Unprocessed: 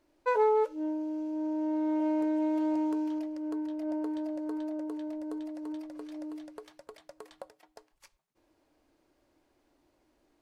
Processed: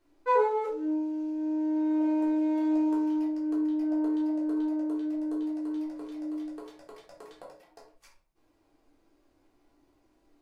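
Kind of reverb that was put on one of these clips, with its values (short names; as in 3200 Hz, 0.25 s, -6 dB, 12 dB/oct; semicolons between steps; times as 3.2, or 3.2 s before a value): shoebox room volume 330 m³, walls furnished, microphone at 3.6 m; gain -5 dB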